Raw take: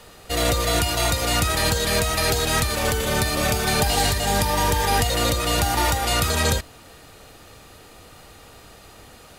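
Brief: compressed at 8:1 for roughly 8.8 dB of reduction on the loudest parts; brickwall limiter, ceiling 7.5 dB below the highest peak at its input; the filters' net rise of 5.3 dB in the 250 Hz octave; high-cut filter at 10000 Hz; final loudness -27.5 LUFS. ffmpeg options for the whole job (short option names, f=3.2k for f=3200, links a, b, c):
-af "lowpass=10k,equalizer=f=250:t=o:g=7,acompressor=threshold=-24dB:ratio=8,volume=4dB,alimiter=limit=-18.5dB:level=0:latency=1"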